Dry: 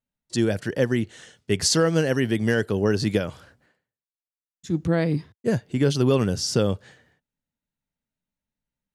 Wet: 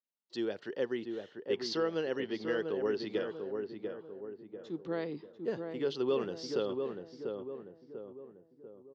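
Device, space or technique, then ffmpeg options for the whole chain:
phone earpiece: -filter_complex "[0:a]asettb=1/sr,asplit=3[link_01][link_02][link_03];[link_01]atrim=end=1.554[link_04];[link_02]atrim=start=1.55:end=3.1,asetpts=PTS-STARTPTS,afade=type=in:duration=0.004:curve=qsin,afade=type=out:start_time=1.546:duration=0.004:curve=qsin,lowpass=frequency=6400:width=0.5412,lowpass=frequency=6400:width=1.3066[link_05];[link_03]atrim=start=3.096[link_06];[link_04][link_05]acrossfade=duration=0.004:curve1=hsin:curve2=qsin[link_07];[link_07][link_06]acrossfade=duration=0.004:curve1=qsin:curve2=hsin,highpass=390,equalizer=frequency=390:width_type=q:width=4:gain=5,equalizer=frequency=640:width_type=q:width=4:gain=-5,equalizer=frequency=1600:width_type=q:width=4:gain=-5,equalizer=frequency=2300:width_type=q:width=4:gain=-7,lowpass=frequency=4200:width=0.5412,lowpass=frequency=4200:width=1.3066,asplit=2[link_08][link_09];[link_09]adelay=693,lowpass=frequency=1200:poles=1,volume=-4.5dB,asplit=2[link_10][link_11];[link_11]adelay=693,lowpass=frequency=1200:poles=1,volume=0.49,asplit=2[link_12][link_13];[link_13]adelay=693,lowpass=frequency=1200:poles=1,volume=0.49,asplit=2[link_14][link_15];[link_15]adelay=693,lowpass=frequency=1200:poles=1,volume=0.49,asplit=2[link_16][link_17];[link_17]adelay=693,lowpass=frequency=1200:poles=1,volume=0.49,asplit=2[link_18][link_19];[link_19]adelay=693,lowpass=frequency=1200:poles=1,volume=0.49[link_20];[link_08][link_10][link_12][link_14][link_16][link_18][link_20]amix=inputs=7:normalize=0,volume=-9dB"

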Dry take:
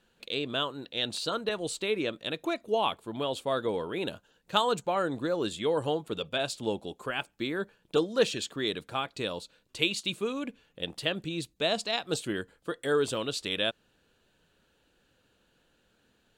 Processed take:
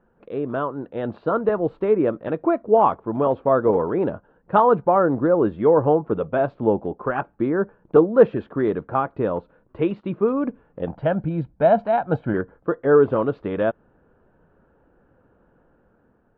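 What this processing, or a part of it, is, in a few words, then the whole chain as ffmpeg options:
action camera in a waterproof case: -filter_complex "[0:a]asettb=1/sr,asplit=3[link_01][link_02][link_03];[link_01]atrim=end=10.874[link_04];[link_02]atrim=start=10.87:end=12.34,asetpts=PTS-STARTPTS,afade=type=in:duration=0.004:curve=qsin,afade=type=out:start_time=1.466:duration=0.004:curve=qsin,aecho=1:1:1.3:0.63,atrim=end_sample=64827[link_05];[link_03]atrim=start=12.336[link_06];[link_04][link_05]acrossfade=duration=0.004:curve1=hsin:curve2=qsin[link_07];[link_07][link_06]acrossfade=duration=0.004:curve1=qsin:curve2=hsin,lowpass=frequency=1300:width=0.5412,lowpass=frequency=1300:width=1.3066,dynaudnorm=framelen=330:gausssize=5:maxgain=4dB,volume=8dB" -ar 48000 -c:a aac -b:a 48k

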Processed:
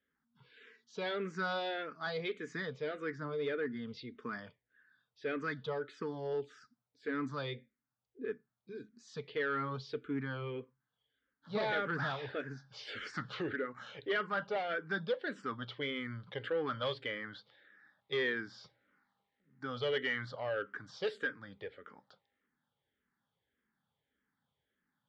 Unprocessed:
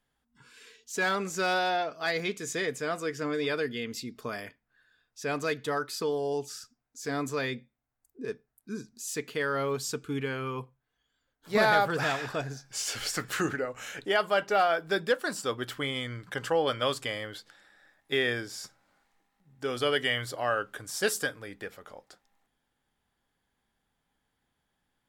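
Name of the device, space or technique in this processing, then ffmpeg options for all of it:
barber-pole phaser into a guitar amplifier: -filter_complex "[0:a]asplit=2[link_01][link_02];[link_02]afreqshift=-1.7[link_03];[link_01][link_03]amix=inputs=2:normalize=1,asoftclip=type=tanh:threshold=-25dB,highpass=110,equalizer=frequency=330:width_type=q:width=4:gain=-4,equalizer=frequency=710:width_type=q:width=4:gain=-9,equalizer=frequency=1000:width_type=q:width=4:gain=-4,equalizer=frequency=2600:width_type=q:width=4:gain=-8,lowpass=frequency=3600:width=0.5412,lowpass=frequency=3600:width=1.3066,asettb=1/sr,asplit=3[link_04][link_05][link_06];[link_04]atrim=end=3.154[link_07];[link_05]atrim=start=3.15:end=3.88,asetpts=PTS-STARTPTS,afade=type=in:duration=0.004:curve=qsin,afade=type=out:start_time=0.726:duration=0.004:curve=qsin,equalizer=frequency=3600:width=0.74:gain=-6[link_08];[link_06]atrim=start=3.876[link_09];[link_07][link_08]acrossfade=duration=0.004:curve1=hsin:curve2=qsin[link_10];[link_10][link_09]acrossfade=duration=0.004:curve1=qsin:curve2=hsin"

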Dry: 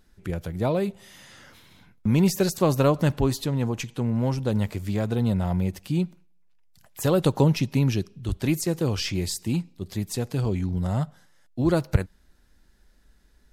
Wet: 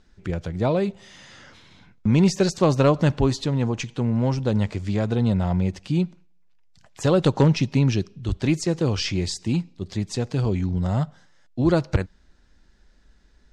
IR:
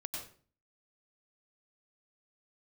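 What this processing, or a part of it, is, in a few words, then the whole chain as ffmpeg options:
synthesiser wavefolder: -af "aeval=exprs='0.282*(abs(mod(val(0)/0.282+3,4)-2)-1)':channel_layout=same,lowpass=frequency=7100:width=0.5412,lowpass=frequency=7100:width=1.3066,volume=2.5dB"

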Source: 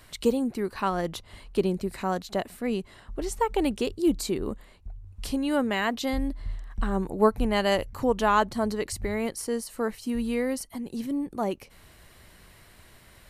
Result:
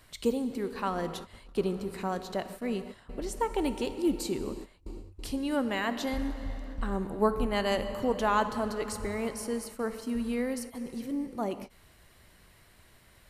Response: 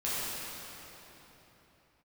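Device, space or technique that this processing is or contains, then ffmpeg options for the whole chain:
keyed gated reverb: -filter_complex "[0:a]asplit=3[link_01][link_02][link_03];[1:a]atrim=start_sample=2205[link_04];[link_02][link_04]afir=irnorm=-1:irlink=0[link_05];[link_03]apad=whole_len=586285[link_06];[link_05][link_06]sidechaingate=range=-33dB:threshold=-42dB:ratio=16:detection=peak,volume=-16dB[link_07];[link_01][link_07]amix=inputs=2:normalize=0,volume=-5.5dB"

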